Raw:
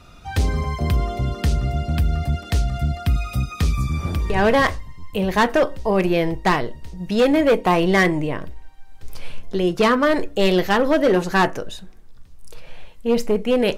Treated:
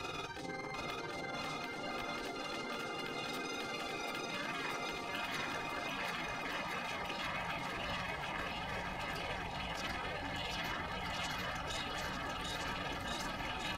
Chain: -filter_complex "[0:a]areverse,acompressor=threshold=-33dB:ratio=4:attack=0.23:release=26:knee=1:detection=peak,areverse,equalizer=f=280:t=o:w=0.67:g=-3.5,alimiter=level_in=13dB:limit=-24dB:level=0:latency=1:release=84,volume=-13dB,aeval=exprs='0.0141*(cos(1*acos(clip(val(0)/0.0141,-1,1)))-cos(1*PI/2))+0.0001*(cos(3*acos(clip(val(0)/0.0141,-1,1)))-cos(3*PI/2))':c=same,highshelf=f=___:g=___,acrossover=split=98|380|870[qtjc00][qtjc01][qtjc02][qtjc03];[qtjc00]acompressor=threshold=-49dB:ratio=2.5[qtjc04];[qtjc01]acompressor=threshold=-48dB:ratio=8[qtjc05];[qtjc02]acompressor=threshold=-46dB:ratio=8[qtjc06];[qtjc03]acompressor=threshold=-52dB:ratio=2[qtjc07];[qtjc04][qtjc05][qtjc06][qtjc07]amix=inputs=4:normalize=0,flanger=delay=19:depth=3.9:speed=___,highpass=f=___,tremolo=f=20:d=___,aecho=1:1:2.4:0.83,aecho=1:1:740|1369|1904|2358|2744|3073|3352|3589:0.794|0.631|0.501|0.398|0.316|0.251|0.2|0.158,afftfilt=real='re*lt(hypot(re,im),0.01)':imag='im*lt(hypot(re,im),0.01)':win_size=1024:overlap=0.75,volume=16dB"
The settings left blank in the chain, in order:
6200, -11.5, 0.9, 56, 0.621